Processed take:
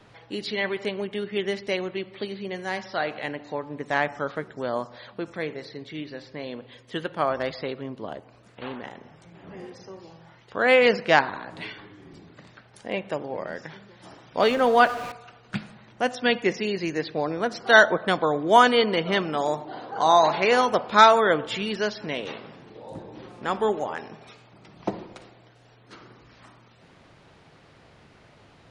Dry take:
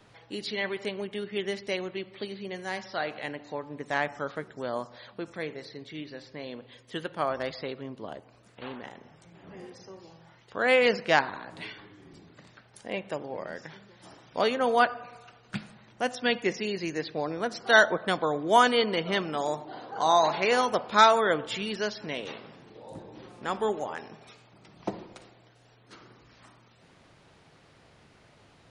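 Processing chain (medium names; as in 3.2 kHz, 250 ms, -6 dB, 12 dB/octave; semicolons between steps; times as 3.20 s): 14.42–15.12 s: jump at every zero crossing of -36 dBFS; treble shelf 7 kHz -9 dB; trim +4.5 dB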